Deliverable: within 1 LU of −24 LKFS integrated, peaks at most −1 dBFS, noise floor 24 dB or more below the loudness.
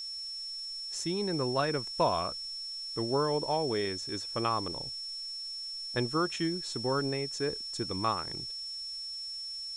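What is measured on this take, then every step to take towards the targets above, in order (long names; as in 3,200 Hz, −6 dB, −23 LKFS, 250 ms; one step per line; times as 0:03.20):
interfering tone 5,400 Hz; level of the tone −37 dBFS; background noise floor −40 dBFS; target noise floor −57 dBFS; integrated loudness −32.5 LKFS; sample peak −15.0 dBFS; target loudness −24.0 LKFS
→ notch filter 5,400 Hz, Q 30
noise reduction from a noise print 17 dB
level +8.5 dB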